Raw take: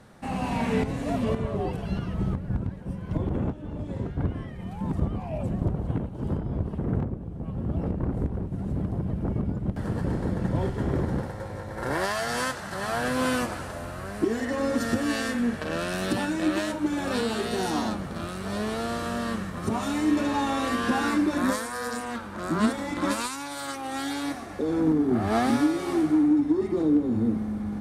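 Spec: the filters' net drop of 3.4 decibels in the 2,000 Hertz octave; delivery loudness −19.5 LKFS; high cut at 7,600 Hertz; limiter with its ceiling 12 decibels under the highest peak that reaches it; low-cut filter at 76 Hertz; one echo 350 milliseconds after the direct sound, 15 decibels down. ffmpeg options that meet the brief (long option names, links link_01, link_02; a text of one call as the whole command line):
ffmpeg -i in.wav -af "highpass=76,lowpass=7600,equalizer=frequency=2000:width_type=o:gain=-4.5,alimiter=limit=-24dB:level=0:latency=1,aecho=1:1:350:0.178,volume=13.5dB" out.wav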